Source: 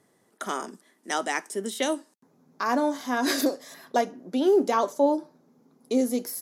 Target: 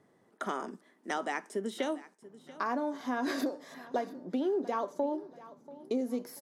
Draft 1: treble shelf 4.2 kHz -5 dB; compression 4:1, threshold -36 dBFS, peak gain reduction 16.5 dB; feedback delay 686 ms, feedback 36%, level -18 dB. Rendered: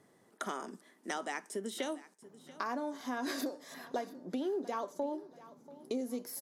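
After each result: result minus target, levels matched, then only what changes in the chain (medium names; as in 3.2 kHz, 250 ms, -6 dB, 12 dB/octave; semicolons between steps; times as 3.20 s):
8 kHz band +8.0 dB; compression: peak gain reduction +4.5 dB
change: treble shelf 4.2 kHz -15.5 dB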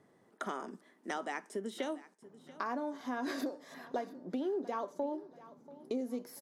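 compression: peak gain reduction +4.5 dB
change: compression 4:1, threshold -30 dBFS, peak gain reduction 11.5 dB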